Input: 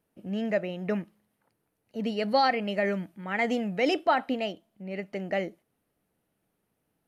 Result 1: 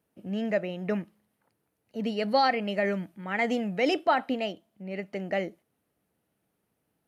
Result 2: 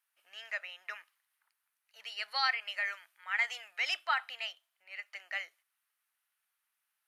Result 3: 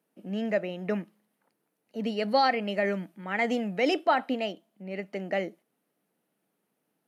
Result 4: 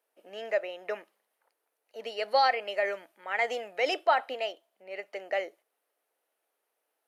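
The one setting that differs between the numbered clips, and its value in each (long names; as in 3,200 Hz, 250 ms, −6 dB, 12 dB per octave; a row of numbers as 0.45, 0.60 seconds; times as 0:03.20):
high-pass filter, corner frequency: 49, 1,200, 170, 470 Hertz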